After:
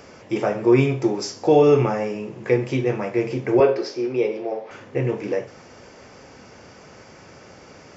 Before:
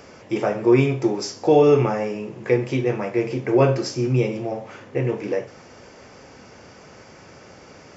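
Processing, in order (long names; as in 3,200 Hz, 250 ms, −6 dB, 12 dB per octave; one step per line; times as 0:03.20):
0:03.60–0:04.71: loudspeaker in its box 370–4,900 Hz, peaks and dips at 420 Hz +8 dB, 1,200 Hz −3 dB, 2,900 Hz −4 dB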